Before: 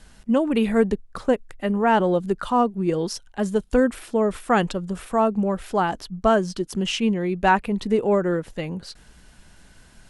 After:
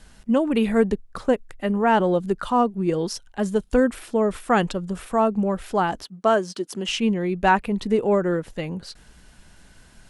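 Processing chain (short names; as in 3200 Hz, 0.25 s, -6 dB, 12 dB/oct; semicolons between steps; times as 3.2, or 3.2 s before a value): 6.03–6.89 HPF 270 Hz 12 dB/oct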